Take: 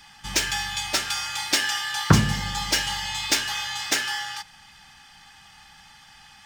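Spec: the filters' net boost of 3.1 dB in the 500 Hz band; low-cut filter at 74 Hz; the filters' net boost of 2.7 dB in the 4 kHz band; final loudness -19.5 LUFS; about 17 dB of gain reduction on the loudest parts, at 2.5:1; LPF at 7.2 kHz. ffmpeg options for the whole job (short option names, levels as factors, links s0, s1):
-af "highpass=74,lowpass=7200,equalizer=f=500:t=o:g=4,equalizer=f=4000:t=o:g=4,acompressor=threshold=0.0112:ratio=2.5,volume=5.96"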